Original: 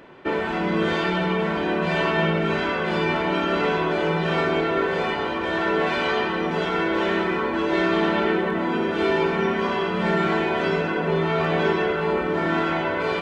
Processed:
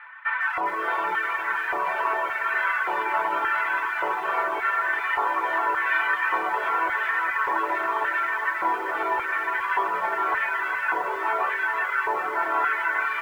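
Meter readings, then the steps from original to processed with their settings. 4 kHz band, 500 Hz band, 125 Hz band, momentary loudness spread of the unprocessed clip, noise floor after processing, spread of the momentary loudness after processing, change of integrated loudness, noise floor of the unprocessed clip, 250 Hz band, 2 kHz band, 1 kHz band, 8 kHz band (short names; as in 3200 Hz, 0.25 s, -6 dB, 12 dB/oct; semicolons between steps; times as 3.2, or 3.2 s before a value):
-11.5 dB, -11.5 dB, under -30 dB, 3 LU, -30 dBFS, 2 LU, -2.0 dB, -26 dBFS, -19.0 dB, +2.5 dB, +2.0 dB, n/a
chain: on a send: reverse echo 0.286 s -22 dB; on the sum: limiter -16 dBFS, peak gain reduction 7.5 dB; high shelf 2400 Hz +4.5 dB; de-hum 54.49 Hz, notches 5; LFO high-pass square 0.87 Hz 330–1700 Hz; EQ curve 110 Hz 0 dB, 250 Hz -18 dB, 560 Hz -1 dB, 1000 Hz +15 dB, 2200 Hz +3 dB, 7600 Hz -28 dB; reverb removal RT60 0.89 s; lo-fi delay 0.407 s, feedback 55%, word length 7-bit, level -8 dB; gain -6.5 dB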